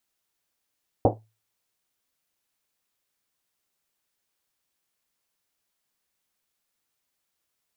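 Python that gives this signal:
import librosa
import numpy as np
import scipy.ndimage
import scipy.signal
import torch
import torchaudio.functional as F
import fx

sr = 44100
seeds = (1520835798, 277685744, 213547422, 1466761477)

y = fx.risset_drum(sr, seeds[0], length_s=1.1, hz=110.0, decay_s=0.32, noise_hz=520.0, noise_width_hz=550.0, noise_pct=70)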